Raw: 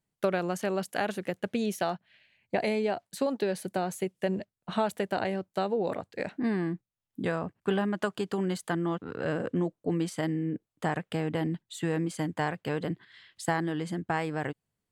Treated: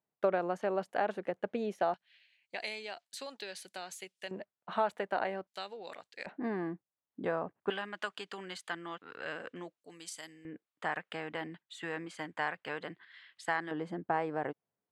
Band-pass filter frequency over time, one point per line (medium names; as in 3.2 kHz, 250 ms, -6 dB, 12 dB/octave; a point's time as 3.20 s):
band-pass filter, Q 0.8
740 Hz
from 1.94 s 4.2 kHz
from 4.31 s 1.1 kHz
from 5.47 s 4.1 kHz
from 6.26 s 760 Hz
from 7.70 s 2.6 kHz
from 9.81 s 6.8 kHz
from 10.45 s 1.7 kHz
from 13.71 s 680 Hz